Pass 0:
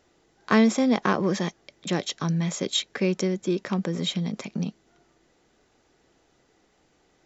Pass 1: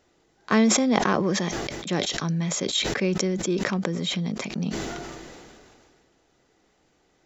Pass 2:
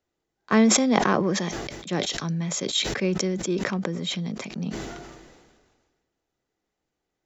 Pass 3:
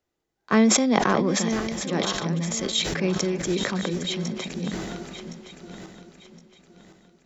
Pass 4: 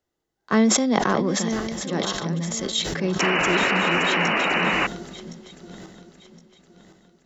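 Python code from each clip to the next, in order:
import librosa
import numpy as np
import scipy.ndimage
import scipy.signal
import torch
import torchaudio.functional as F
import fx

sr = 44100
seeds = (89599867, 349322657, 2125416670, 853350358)

y1 = fx.sustainer(x, sr, db_per_s=26.0)
y1 = F.gain(torch.from_numpy(y1), -1.0).numpy()
y2 = fx.band_widen(y1, sr, depth_pct=40)
y2 = F.gain(torch.from_numpy(y2), -1.0).numpy()
y3 = fx.reverse_delay_fb(y2, sr, ms=533, feedback_pct=55, wet_db=-9.0)
y4 = fx.notch(y3, sr, hz=2400.0, q=8.6)
y4 = fx.spec_paint(y4, sr, seeds[0], shape='noise', start_s=3.19, length_s=1.68, low_hz=240.0, high_hz=3000.0, level_db=-22.0)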